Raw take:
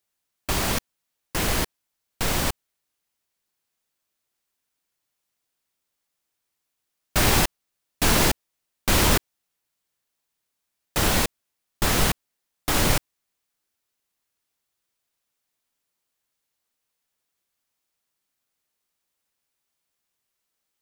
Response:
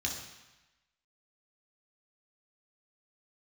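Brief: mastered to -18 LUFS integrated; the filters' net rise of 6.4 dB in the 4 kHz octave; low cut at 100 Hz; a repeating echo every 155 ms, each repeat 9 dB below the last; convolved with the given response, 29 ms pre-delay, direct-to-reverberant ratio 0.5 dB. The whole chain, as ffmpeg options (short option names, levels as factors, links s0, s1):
-filter_complex "[0:a]highpass=100,equalizer=f=4000:t=o:g=8,aecho=1:1:155|310|465|620:0.355|0.124|0.0435|0.0152,asplit=2[s0][s1];[1:a]atrim=start_sample=2205,adelay=29[s2];[s1][s2]afir=irnorm=-1:irlink=0,volume=0.596[s3];[s0][s3]amix=inputs=2:normalize=0"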